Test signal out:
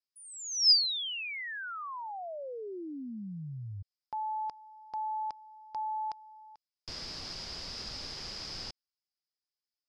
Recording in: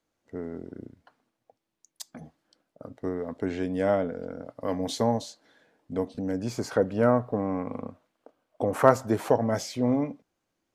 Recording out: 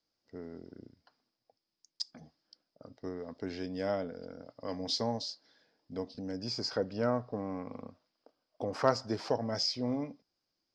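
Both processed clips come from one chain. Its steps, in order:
low-pass with resonance 5,000 Hz, resonance Q 12
level −9 dB

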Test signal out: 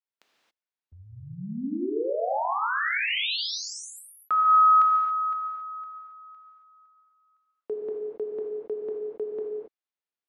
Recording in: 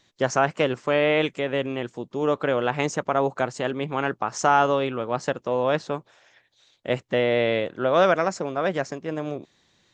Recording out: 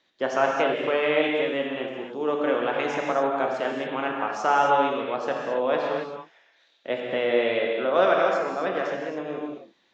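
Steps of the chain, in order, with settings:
three-way crossover with the lows and the highs turned down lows −18 dB, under 230 Hz, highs −21 dB, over 4,900 Hz
reverb whose tail is shaped and stops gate 300 ms flat, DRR −1 dB
level −3.5 dB

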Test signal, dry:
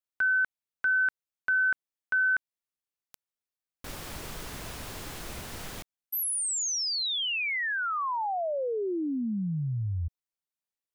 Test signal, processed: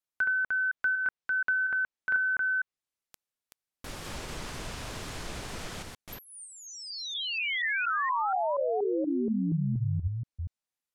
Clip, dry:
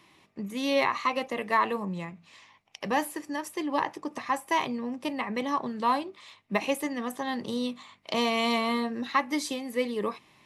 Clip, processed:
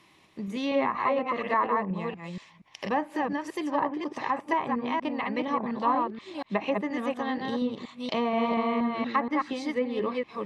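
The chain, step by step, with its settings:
delay that plays each chunk backwards 238 ms, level −3 dB
treble cut that deepens with the level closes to 1,500 Hz, closed at −22.5 dBFS

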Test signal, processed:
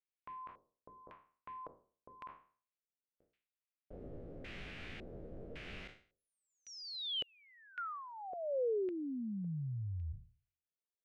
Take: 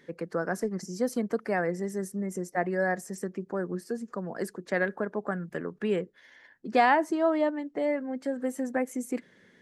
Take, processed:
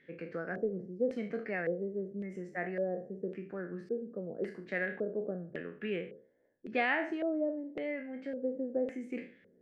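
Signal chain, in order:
peak hold with a decay on every bin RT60 0.43 s
auto-filter low-pass square 0.9 Hz 510–2,500 Hz
parametric band 970 Hz −12 dB 0.67 octaves
level −8.5 dB

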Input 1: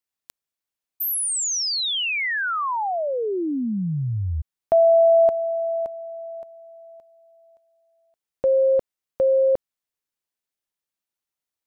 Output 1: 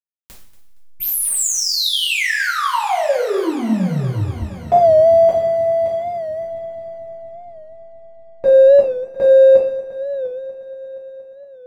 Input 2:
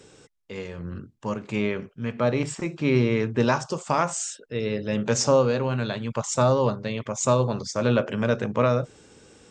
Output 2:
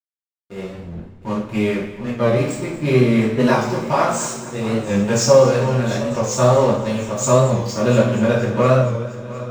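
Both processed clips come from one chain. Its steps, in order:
hum removal 85.7 Hz, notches 16
slack as between gear wheels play −30 dBFS
on a send: echo machine with several playback heads 235 ms, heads first and third, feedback 57%, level −17 dB
on the sum: coupled-rooms reverb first 0.52 s, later 1.8 s, DRR −7.5 dB
wow of a warped record 45 rpm, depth 100 cents
level −1.5 dB

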